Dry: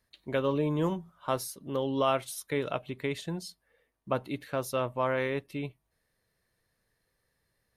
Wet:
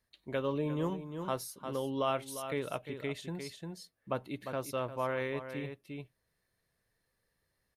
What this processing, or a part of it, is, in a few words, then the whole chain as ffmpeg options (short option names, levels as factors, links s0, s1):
ducked delay: -filter_complex "[0:a]asplit=3[s0][s1][s2];[s1]adelay=351,volume=0.75[s3];[s2]apad=whole_len=357743[s4];[s3][s4]sidechaincompress=threshold=0.0141:ratio=5:attack=30:release=583[s5];[s0][s5]amix=inputs=2:normalize=0,volume=0.562"